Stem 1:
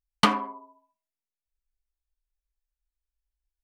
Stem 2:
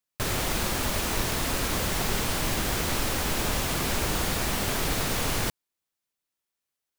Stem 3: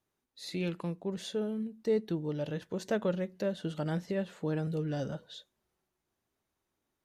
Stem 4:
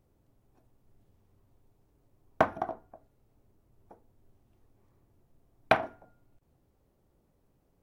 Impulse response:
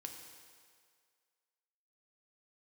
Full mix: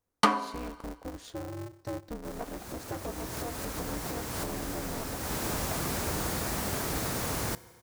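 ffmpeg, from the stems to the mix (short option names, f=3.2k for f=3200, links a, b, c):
-filter_complex "[0:a]highpass=250,volume=-2.5dB,asplit=2[a][b];[b]volume=-4.5dB[c];[1:a]highpass=52,dynaudnorm=f=430:g=5:m=12dB,adelay=2050,volume=-16dB,asplit=2[d][e];[e]volume=-8dB[f];[2:a]acompressor=threshold=-34dB:ratio=2.5,aeval=exprs='val(0)*sgn(sin(2*PI*120*n/s))':c=same,volume=-3dB,asplit=3[g][h][i];[h]volume=-15dB[j];[3:a]volume=-19.5dB[k];[i]apad=whole_len=398546[l];[d][l]sidechaincompress=threshold=-44dB:ratio=8:attack=9.9:release=306[m];[4:a]atrim=start_sample=2205[n];[c][f][j]amix=inputs=3:normalize=0[o];[o][n]afir=irnorm=-1:irlink=0[p];[a][m][g][k][p]amix=inputs=5:normalize=0,equalizer=f=3k:t=o:w=1.2:g=-7"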